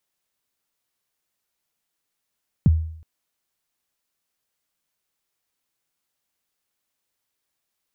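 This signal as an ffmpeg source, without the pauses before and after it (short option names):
-f lavfi -i "aevalsrc='0.355*pow(10,-3*t/0.63)*sin(2*PI*(210*0.027/log(80/210)*(exp(log(80/210)*min(t,0.027)/0.027)-1)+80*max(t-0.027,0)))':d=0.37:s=44100"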